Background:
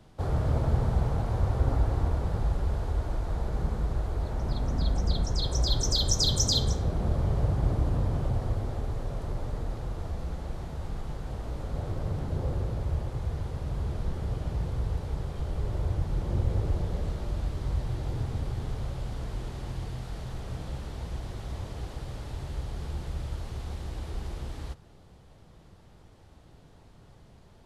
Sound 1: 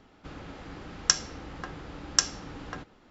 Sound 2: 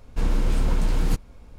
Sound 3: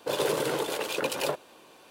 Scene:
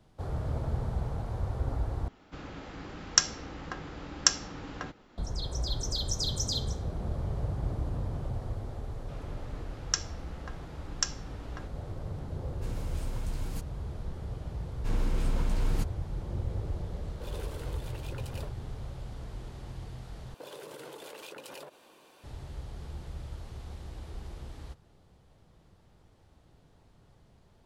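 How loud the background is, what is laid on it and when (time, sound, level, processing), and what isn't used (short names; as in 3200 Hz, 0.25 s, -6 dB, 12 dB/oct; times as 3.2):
background -6.5 dB
2.08 replace with 1
8.84 add 1 -7 dB
12.45 add 2 -15 dB + high shelf 5000 Hz +9.5 dB
14.68 add 2 -7 dB
17.14 add 3 -17 dB
20.34 replace with 3 -4.5 dB + compressor 10:1, threshold -37 dBFS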